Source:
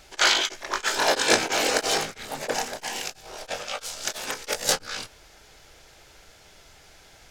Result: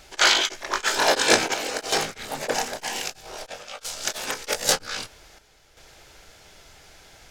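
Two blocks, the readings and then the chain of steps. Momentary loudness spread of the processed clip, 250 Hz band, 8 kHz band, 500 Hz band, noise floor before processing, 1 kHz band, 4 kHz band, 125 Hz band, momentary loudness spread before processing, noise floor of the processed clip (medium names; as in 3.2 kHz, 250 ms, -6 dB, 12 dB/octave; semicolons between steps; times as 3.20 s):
17 LU, +1.0 dB, +1.5 dB, +1.0 dB, -53 dBFS, +1.5 dB, +1.5 dB, +1.5 dB, 15 LU, -55 dBFS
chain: square tremolo 0.52 Hz, depth 60%, duty 80%; trim +2 dB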